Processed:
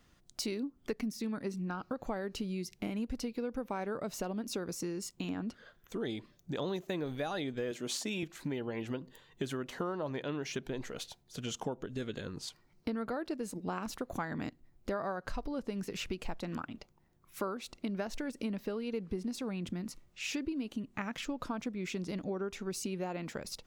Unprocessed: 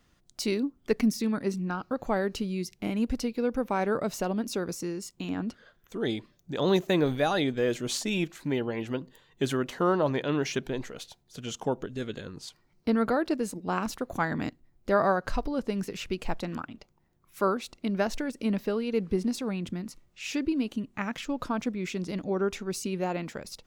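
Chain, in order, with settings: 7.71–8.23 s: high-pass 170 Hz; compression 5:1, threshold -34 dBFS, peak gain reduction 14 dB

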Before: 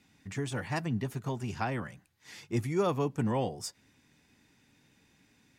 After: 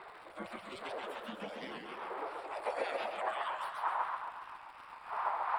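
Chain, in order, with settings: drifting ripple filter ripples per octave 0.97, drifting -0.36 Hz, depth 11 dB; wind noise 170 Hz -32 dBFS; spectral gate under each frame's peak -30 dB weak; tilt shelf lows +8.5 dB; 1.84–2.66 s: compression, threshold -55 dBFS, peak gain reduction 10 dB; high-pass sweep 150 Hz -> 990 Hz, 0.60–3.67 s; crackle 140 per s -53 dBFS; boxcar filter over 7 samples; modulated delay 136 ms, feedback 50%, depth 170 cents, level -3.5 dB; trim +13.5 dB

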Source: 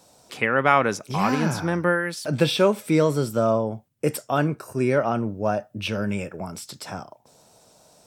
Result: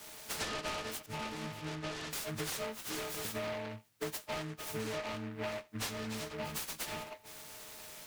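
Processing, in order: partials quantised in pitch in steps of 6 st; 2.78–3.25 s: high-pass 950 Hz 6 dB/octave; compression 12:1, threshold -31 dBFS, peak gain reduction 21.5 dB; 1.06–2.13 s: distance through air 310 m; delay time shaken by noise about 1.4 kHz, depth 0.14 ms; trim -5 dB

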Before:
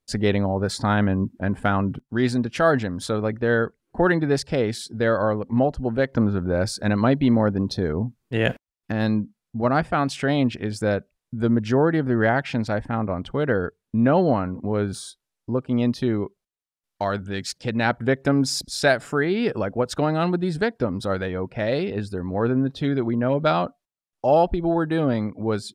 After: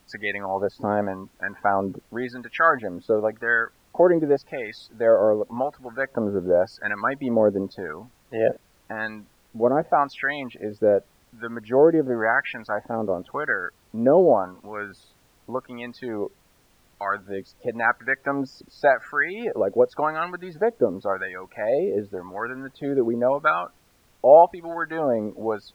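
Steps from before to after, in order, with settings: loudest bins only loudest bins 64; wah-wah 0.9 Hz 440–1800 Hz, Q 2.2; added noise pink -67 dBFS; trim +7 dB

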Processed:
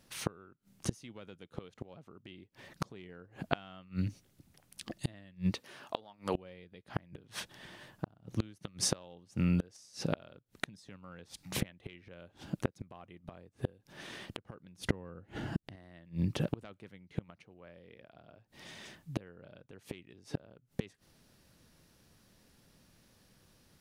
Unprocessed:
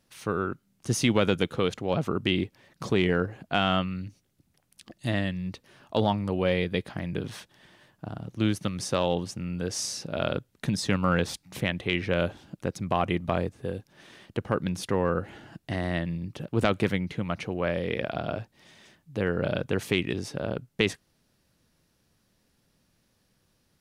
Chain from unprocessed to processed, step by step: 5.50–6.34 s: high-pass 260 Hz -> 890 Hz 6 dB/octave; 14.81–15.76 s: bass shelf 330 Hz +9 dB; inverted gate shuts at -23 dBFS, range -31 dB; trim +4.5 dB

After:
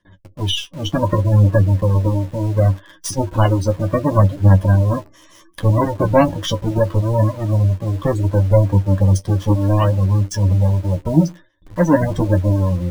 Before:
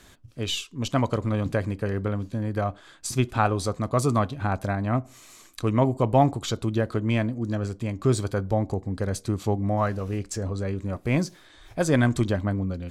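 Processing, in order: square wave that keeps the level; spectral gate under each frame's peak -20 dB strong; gate with hold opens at -40 dBFS; rippled EQ curve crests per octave 1.2, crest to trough 14 dB; in parallel at -5 dB: word length cut 6-bit, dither none; on the sum: flange 0.68 Hz, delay 9.8 ms, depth 3.5 ms, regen +29%; trim +2 dB

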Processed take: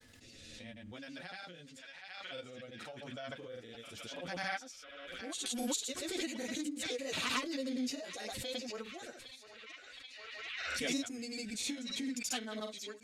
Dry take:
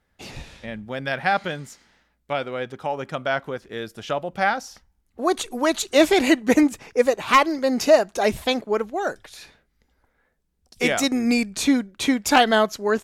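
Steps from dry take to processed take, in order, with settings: graphic EQ 250/500/4000/8000 Hz +11/+8/+5/+7 dB; compression 4:1, threshold -9 dBFS, peak gain reduction 7.5 dB; amplifier tone stack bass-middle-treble 5-5-5; comb of notches 200 Hz; on a send: band-passed feedback delay 781 ms, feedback 68%, band-pass 2.4 kHz, level -9 dB; on the sum: flange 0.33 Hz, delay 8.4 ms, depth 3.4 ms, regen -1%; rotary cabinet horn 0.85 Hz, later 5.5 Hz, at 5.86 s; granulator, pitch spread up and down by 0 st; tremolo 4.2 Hz, depth 61%; swell ahead of each attack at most 24 dB/s; trim -1 dB

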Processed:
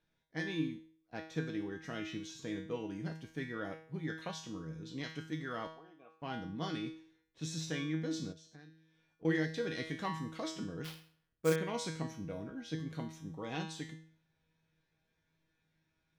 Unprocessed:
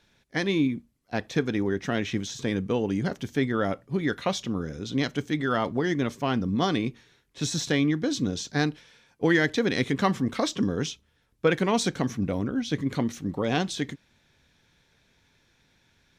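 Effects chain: 5.67–6.22 s: vowel filter a; feedback comb 160 Hz, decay 0.56 s, harmonics all, mix 90%; 8.32–9.25 s: compression 5:1, threshold -55 dBFS, peak gain reduction 18.5 dB; 10.84–11.56 s: sample-rate reducer 7.8 kHz, jitter 20%; tape noise reduction on one side only decoder only

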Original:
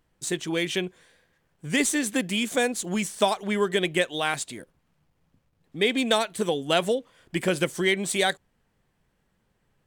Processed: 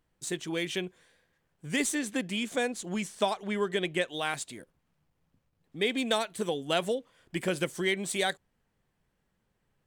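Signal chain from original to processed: 1.95–4.08 s: treble shelf 10 kHz -10 dB; trim -5.5 dB

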